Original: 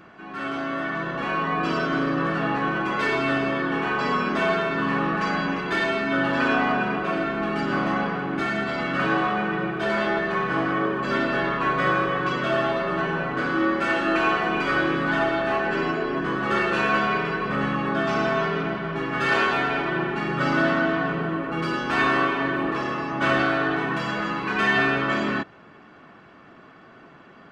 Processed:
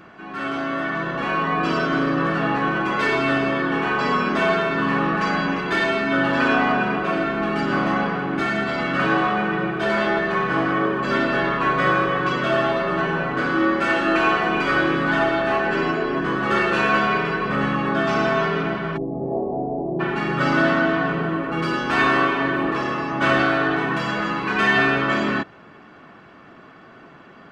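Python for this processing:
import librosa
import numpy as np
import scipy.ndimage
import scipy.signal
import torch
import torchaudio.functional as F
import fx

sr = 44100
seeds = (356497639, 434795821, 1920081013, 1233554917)

y = fx.ellip_lowpass(x, sr, hz=740.0, order=4, stop_db=50, at=(18.96, 19.99), fade=0.02)
y = y * librosa.db_to_amplitude(3.0)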